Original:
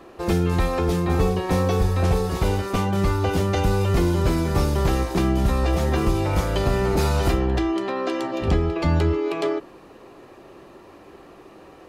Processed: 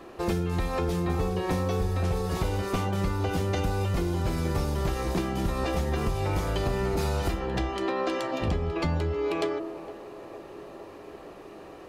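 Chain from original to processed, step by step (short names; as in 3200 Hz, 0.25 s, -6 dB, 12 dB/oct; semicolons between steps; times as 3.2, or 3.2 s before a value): de-hum 65.81 Hz, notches 24; compressor, threshold -24 dBFS, peak gain reduction 9.5 dB; narrowing echo 0.46 s, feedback 80%, band-pass 590 Hz, level -13.5 dB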